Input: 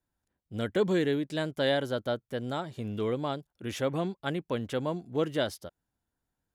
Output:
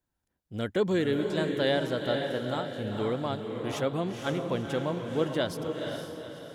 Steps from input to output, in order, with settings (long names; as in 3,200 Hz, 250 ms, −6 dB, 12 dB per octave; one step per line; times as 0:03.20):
feedback delay with all-pass diffusion 485 ms, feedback 43%, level −4.5 dB
Nellymoser 88 kbit/s 44,100 Hz